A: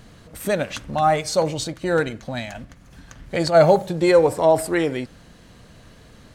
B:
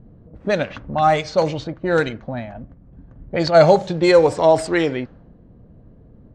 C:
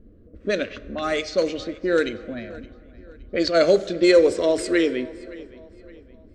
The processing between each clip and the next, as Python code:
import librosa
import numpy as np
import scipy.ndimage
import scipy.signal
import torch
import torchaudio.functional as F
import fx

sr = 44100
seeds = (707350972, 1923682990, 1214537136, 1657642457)

y1 = fx.env_lowpass(x, sr, base_hz=390.0, full_db=-14.0)
y1 = scipy.signal.sosfilt(scipy.signal.butter(4, 6600.0, 'lowpass', fs=sr, output='sos'), y1)
y1 = fx.high_shelf(y1, sr, hz=4100.0, db=7.0)
y1 = y1 * 10.0 ** (2.0 / 20.0)
y2 = fx.fixed_phaser(y1, sr, hz=350.0, stages=4)
y2 = fx.echo_filtered(y2, sr, ms=568, feedback_pct=42, hz=4800.0, wet_db=-20.0)
y2 = fx.rev_plate(y2, sr, seeds[0], rt60_s=2.1, hf_ratio=0.5, predelay_ms=0, drr_db=16.0)